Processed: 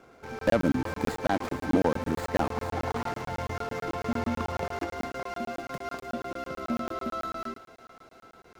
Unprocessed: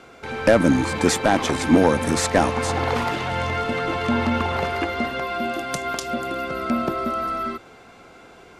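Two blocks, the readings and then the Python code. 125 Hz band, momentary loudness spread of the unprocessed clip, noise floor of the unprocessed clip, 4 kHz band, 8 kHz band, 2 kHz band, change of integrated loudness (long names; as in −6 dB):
−8.5 dB, 9 LU, −47 dBFS, −14.0 dB, −18.0 dB, −11.0 dB, −9.5 dB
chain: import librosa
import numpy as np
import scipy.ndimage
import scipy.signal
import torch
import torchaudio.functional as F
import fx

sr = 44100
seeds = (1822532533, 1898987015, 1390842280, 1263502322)

p1 = scipy.signal.medfilt(x, 15)
p2 = p1 + fx.echo_thinned(p1, sr, ms=371, feedback_pct=80, hz=670.0, wet_db=-17, dry=0)
p3 = fx.buffer_crackle(p2, sr, first_s=0.39, period_s=0.11, block=1024, kind='zero')
y = p3 * 10.0 ** (-7.5 / 20.0)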